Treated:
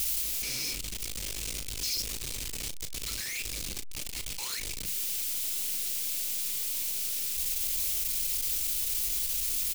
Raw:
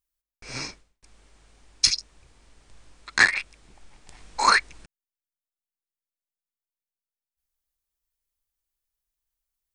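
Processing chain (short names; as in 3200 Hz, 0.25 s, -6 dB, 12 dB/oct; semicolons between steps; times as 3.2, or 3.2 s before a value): infinite clipping; band shelf 1100 Hz -9.5 dB; doubler 35 ms -12.5 dB; limiter -29.5 dBFS, peak gain reduction 5.5 dB; high shelf 2300 Hz +9.5 dB; gain -4 dB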